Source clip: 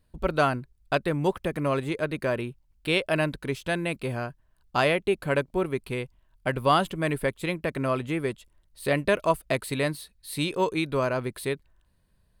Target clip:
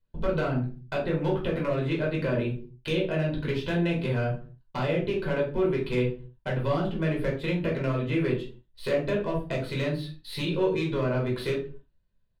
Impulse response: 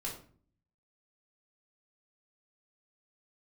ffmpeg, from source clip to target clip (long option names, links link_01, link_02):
-filter_complex "[0:a]agate=range=-18dB:threshold=-54dB:ratio=16:detection=peak,highshelf=frequency=5500:width_type=q:width=1.5:gain=-12.5,acrossover=split=450[link_01][link_02];[link_01]alimiter=level_in=4.5dB:limit=-24dB:level=0:latency=1:release=87,volume=-4.5dB[link_03];[link_02]acompressor=threshold=-35dB:ratio=12[link_04];[link_03][link_04]amix=inputs=2:normalize=0,asoftclip=type=hard:threshold=-25dB,asplit=2[link_05][link_06];[link_06]adelay=40,volume=-14dB[link_07];[link_05][link_07]amix=inputs=2:normalize=0[link_08];[1:a]atrim=start_sample=2205,afade=type=out:start_time=0.44:duration=0.01,atrim=end_sample=19845,asetrate=57330,aresample=44100[link_09];[link_08][link_09]afir=irnorm=-1:irlink=0,volume=6.5dB"